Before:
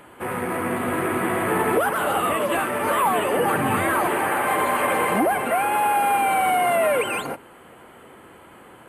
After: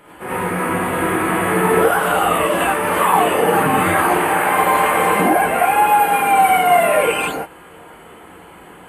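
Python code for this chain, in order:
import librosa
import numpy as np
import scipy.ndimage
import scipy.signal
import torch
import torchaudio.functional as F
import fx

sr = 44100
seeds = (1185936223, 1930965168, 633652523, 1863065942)

y = fx.rev_gated(x, sr, seeds[0], gate_ms=120, shape='rising', drr_db=-7.5)
y = F.gain(torch.from_numpy(y), -2.0).numpy()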